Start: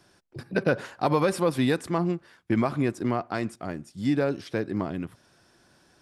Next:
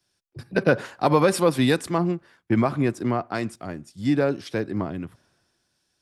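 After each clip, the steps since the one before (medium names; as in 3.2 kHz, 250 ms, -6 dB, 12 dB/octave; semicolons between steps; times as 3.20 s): in parallel at -2 dB: compression, threshold -34 dBFS, peak gain reduction 15 dB; on the sum: three bands expanded up and down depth 70%; trim +1.5 dB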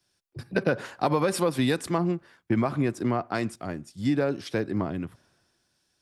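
compression 3:1, threshold -21 dBFS, peak gain reduction 6.5 dB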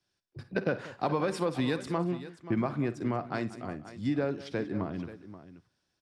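distance through air 67 m; on a send: multi-tap echo 50/60/186/531 ms -17.5/-19.5/-17.5/-14.5 dB; on the sum: trim -5 dB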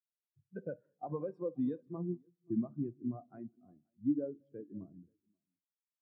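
reverberation RT60 1.8 s, pre-delay 20 ms, DRR 13 dB; spectral contrast expander 2.5:1; trim -8 dB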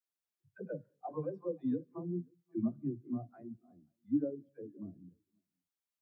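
phase dispersion lows, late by 89 ms, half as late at 370 Hz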